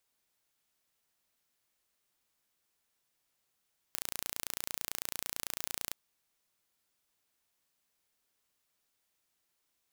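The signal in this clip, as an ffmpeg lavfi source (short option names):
-f lavfi -i "aevalsrc='0.376*eq(mod(n,1521),0)':d=1.98:s=44100"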